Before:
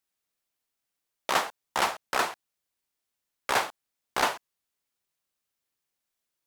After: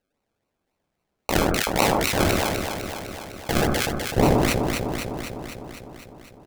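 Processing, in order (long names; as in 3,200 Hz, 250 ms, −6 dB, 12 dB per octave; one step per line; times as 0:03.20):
double-tracking delay 14 ms −11.5 dB
sample-and-hold swept by an LFO 37×, swing 60% 3.7 Hz
tilt shelving filter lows −3 dB, about 680 Hz, from 0:03.66 lows +5.5 dB
delay that swaps between a low-pass and a high-pass 126 ms, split 1,500 Hz, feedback 82%, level −3.5 dB
level that may fall only so fast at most 21 dB per second
level +4 dB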